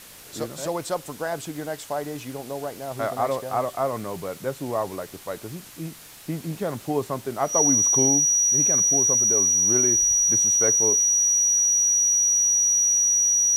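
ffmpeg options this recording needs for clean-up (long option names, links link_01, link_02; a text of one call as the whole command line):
ffmpeg -i in.wav -af "adeclick=threshold=4,bandreject=frequency=5800:width=30,afwtdn=0.0063" out.wav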